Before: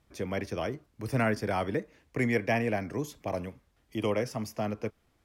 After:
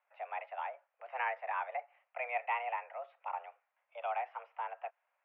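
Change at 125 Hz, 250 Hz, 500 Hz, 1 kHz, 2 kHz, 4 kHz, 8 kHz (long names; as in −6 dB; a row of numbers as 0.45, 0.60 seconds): below −40 dB, below −40 dB, −12.5 dB, +0.5 dB, −5.5 dB, −13.5 dB, below −30 dB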